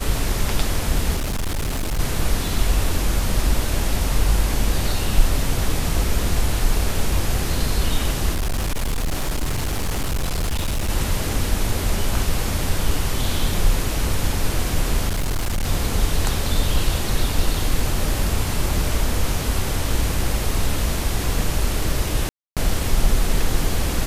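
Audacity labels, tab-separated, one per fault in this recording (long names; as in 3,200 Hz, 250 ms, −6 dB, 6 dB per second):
1.160000	2.000000	clipping −20 dBFS
8.330000	10.900000	clipping −18.5 dBFS
15.080000	15.660000	clipping −18 dBFS
22.290000	22.570000	drop-out 277 ms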